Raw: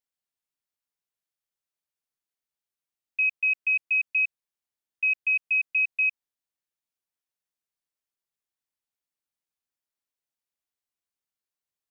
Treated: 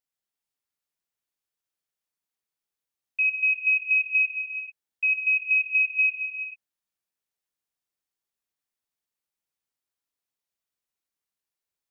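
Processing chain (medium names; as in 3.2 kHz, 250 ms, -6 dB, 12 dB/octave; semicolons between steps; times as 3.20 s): gated-style reverb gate 470 ms flat, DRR 1 dB; trim -1 dB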